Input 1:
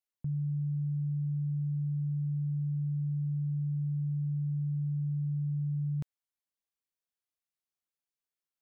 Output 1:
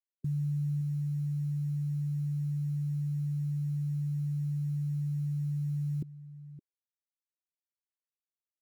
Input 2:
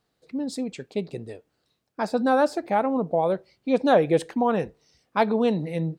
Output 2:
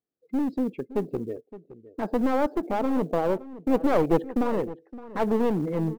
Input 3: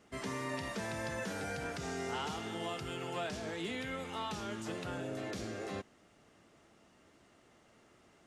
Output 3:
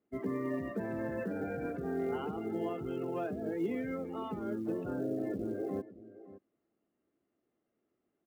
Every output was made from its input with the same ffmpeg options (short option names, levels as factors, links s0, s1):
-filter_complex "[0:a]lowpass=2900,bandreject=f=920:w=16,afftdn=nr=22:nf=-40,equalizer=f=320:w=0.8:g=12.5,asplit=2[s0][s1];[s1]acompressor=threshold=0.0794:ratio=12,volume=0.794[s2];[s0][s2]amix=inputs=2:normalize=0,aeval=exprs='clip(val(0),-1,0.141)':c=same,acrusher=bits=9:mode=log:mix=0:aa=0.000001,asplit=2[s3][s4];[s4]adelay=565.6,volume=0.158,highshelf=f=4000:g=-12.7[s5];[s3][s5]amix=inputs=2:normalize=0,volume=0.376"